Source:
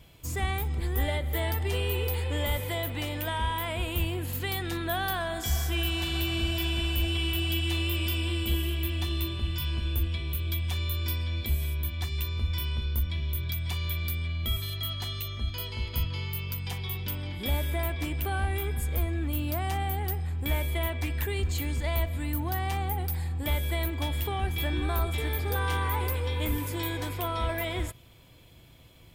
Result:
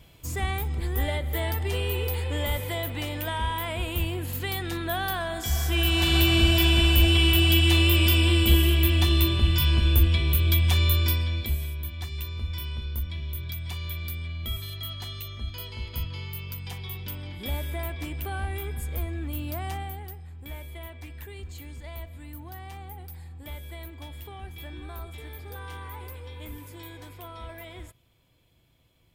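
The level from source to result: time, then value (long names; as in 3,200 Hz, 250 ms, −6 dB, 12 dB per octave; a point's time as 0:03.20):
0:05.49 +1 dB
0:06.13 +9 dB
0:10.92 +9 dB
0:11.73 −2.5 dB
0:19.71 −2.5 dB
0:20.18 −11 dB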